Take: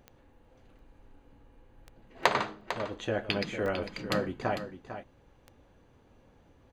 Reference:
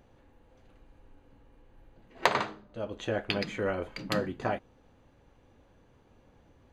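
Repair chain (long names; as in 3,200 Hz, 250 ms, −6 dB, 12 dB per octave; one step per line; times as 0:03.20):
click removal
repair the gap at 0:00.79/0:02.23/0:02.61/0:03.66, 2.5 ms
echo removal 450 ms −10.5 dB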